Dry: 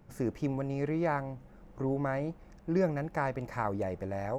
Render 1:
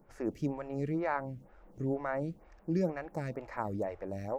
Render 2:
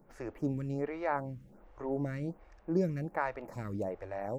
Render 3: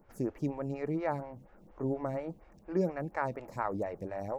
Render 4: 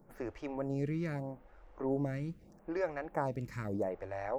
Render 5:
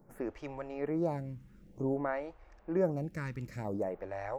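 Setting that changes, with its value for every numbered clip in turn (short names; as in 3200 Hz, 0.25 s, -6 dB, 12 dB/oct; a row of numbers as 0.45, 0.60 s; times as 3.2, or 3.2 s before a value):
photocell phaser, rate: 2.1, 1.3, 4.2, 0.79, 0.53 Hz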